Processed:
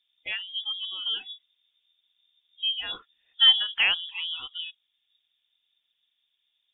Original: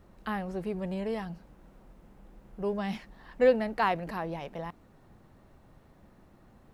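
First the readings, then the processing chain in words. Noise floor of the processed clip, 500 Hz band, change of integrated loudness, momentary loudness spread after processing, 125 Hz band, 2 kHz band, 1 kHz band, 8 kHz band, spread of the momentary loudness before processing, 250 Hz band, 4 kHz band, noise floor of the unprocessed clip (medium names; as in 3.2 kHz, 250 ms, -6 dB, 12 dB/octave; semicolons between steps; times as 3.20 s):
-77 dBFS, under -25 dB, +7.0 dB, 19 LU, under -25 dB, +8.0 dB, -11.0 dB, no reading, 17 LU, under -25 dB, +27.5 dB, -59 dBFS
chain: frequency inversion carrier 3.6 kHz; spectral noise reduction 23 dB; trim +4 dB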